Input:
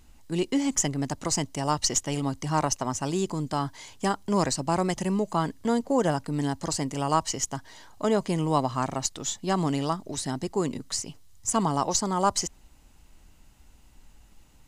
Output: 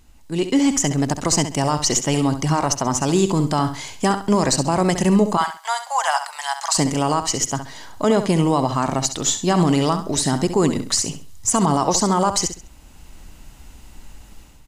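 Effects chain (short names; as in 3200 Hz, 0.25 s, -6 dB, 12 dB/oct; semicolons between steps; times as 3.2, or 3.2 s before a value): 5.37–6.77 steep high-pass 750 Hz 48 dB/oct; AGC gain up to 10 dB; limiter -9.5 dBFS, peak gain reduction 8 dB; feedback echo 67 ms, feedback 28%, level -10 dB; gain +2.5 dB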